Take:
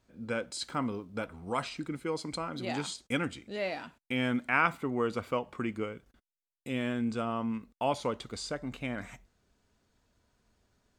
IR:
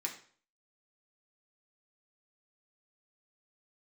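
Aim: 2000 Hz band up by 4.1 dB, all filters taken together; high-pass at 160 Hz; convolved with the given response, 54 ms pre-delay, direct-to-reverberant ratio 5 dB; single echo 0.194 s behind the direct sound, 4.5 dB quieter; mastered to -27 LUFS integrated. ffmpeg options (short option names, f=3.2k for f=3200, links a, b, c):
-filter_complex "[0:a]highpass=160,equalizer=f=2k:t=o:g=5.5,aecho=1:1:194:0.596,asplit=2[a][b];[1:a]atrim=start_sample=2205,adelay=54[c];[b][c]afir=irnorm=-1:irlink=0,volume=-6dB[d];[a][d]amix=inputs=2:normalize=0,volume=3.5dB"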